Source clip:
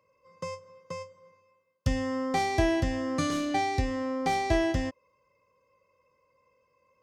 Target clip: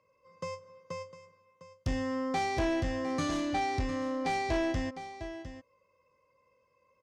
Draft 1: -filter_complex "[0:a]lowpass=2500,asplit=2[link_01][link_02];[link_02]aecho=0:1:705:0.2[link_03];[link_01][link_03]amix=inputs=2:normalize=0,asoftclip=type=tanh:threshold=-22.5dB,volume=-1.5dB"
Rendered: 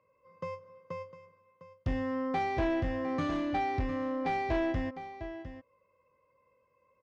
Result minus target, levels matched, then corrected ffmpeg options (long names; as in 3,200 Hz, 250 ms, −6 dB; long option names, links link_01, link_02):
8,000 Hz band −15.5 dB
-filter_complex "[0:a]lowpass=8300,asplit=2[link_01][link_02];[link_02]aecho=0:1:705:0.2[link_03];[link_01][link_03]amix=inputs=2:normalize=0,asoftclip=type=tanh:threshold=-22.5dB,volume=-1.5dB"